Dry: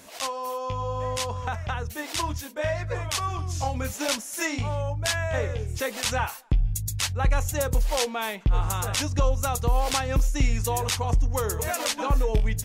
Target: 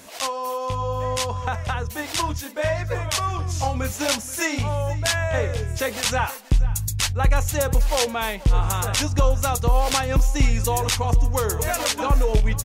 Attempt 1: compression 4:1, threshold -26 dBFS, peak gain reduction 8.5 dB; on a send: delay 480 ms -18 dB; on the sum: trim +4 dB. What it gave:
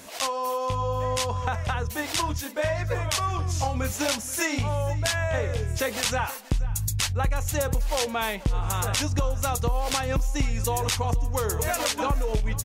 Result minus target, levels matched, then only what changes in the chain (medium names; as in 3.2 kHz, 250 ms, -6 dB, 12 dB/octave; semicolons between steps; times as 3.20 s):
compression: peak gain reduction +8.5 dB
remove: compression 4:1, threshold -26 dBFS, peak gain reduction 8.5 dB